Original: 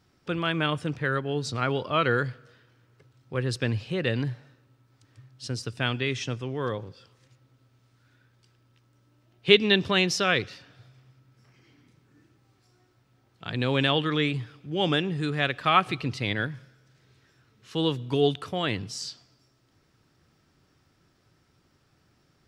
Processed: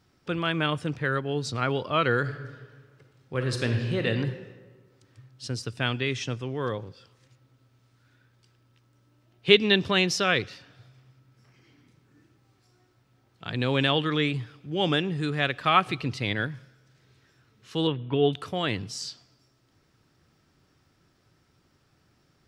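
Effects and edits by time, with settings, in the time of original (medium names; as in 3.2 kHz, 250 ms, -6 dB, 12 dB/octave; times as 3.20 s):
2.20–4.07 s: reverb throw, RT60 1.5 s, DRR 3.5 dB
17.87–18.33 s: steep low-pass 3.4 kHz 48 dB/octave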